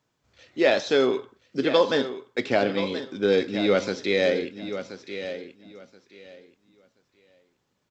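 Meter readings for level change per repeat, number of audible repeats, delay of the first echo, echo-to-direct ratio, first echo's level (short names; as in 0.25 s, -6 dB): -14.0 dB, 2, 1.028 s, -11.0 dB, -11.0 dB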